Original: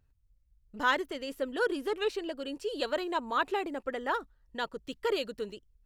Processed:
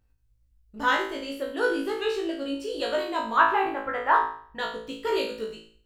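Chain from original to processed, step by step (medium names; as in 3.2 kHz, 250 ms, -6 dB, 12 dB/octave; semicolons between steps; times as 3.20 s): 3.37–4.59 s: graphic EQ 125/250/500/1000/2000/4000/8000 Hz +11/-5/-3/+10/+5/-4/-12 dB; flutter echo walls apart 3.1 m, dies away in 0.51 s; endings held to a fixed fall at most 190 dB/s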